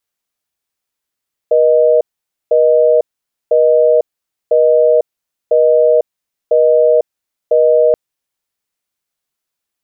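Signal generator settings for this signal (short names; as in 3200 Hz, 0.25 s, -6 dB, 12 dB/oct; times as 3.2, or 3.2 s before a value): call progress tone busy tone, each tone -9.5 dBFS 6.43 s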